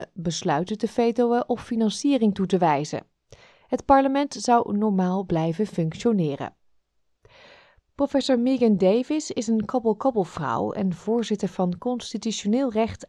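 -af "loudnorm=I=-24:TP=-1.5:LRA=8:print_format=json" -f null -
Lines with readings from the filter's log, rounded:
"input_i" : "-24.0",
"input_tp" : "-4.9",
"input_lra" : "3.1",
"input_thresh" : "-34.5",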